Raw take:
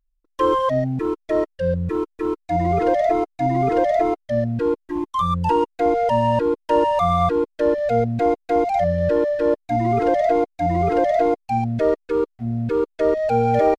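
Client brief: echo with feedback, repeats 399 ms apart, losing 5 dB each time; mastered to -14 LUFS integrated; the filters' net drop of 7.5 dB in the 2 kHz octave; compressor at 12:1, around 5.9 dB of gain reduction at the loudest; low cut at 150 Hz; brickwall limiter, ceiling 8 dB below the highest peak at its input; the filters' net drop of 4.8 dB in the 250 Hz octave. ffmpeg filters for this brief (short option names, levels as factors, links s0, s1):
-af "highpass=150,equalizer=f=250:t=o:g=-6,equalizer=f=2000:t=o:g=-9,acompressor=threshold=0.0891:ratio=12,alimiter=limit=0.0891:level=0:latency=1,aecho=1:1:399|798|1197|1596|1995|2394|2793:0.562|0.315|0.176|0.0988|0.0553|0.031|0.0173,volume=5.01"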